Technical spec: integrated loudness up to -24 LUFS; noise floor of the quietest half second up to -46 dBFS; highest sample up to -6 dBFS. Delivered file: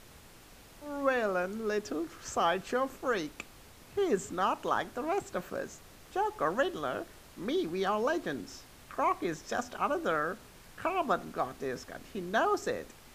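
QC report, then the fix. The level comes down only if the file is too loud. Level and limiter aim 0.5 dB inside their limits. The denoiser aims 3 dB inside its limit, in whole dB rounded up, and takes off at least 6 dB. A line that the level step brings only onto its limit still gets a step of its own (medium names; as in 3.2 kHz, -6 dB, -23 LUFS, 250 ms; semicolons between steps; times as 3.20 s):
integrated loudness -33.0 LUFS: pass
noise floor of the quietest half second -54 dBFS: pass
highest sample -15.0 dBFS: pass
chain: none needed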